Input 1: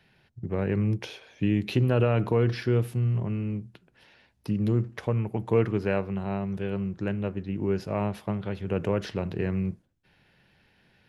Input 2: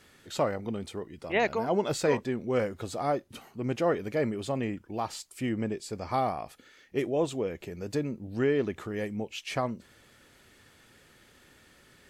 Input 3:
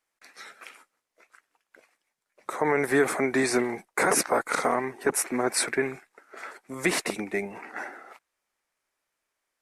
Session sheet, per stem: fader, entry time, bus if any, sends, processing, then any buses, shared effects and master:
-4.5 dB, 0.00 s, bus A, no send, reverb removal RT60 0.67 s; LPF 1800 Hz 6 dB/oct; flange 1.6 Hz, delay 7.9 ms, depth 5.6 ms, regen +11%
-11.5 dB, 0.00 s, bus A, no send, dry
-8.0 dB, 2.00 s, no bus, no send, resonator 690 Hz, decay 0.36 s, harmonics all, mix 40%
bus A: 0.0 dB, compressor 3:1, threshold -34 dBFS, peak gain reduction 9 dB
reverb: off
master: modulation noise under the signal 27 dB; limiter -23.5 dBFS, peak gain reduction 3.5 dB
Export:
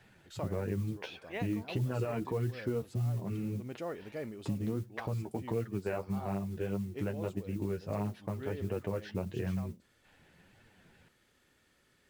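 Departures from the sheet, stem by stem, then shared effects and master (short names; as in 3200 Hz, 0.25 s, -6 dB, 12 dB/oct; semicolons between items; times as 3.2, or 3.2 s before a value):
stem 1 -4.5 dB -> +6.5 dB; stem 3: muted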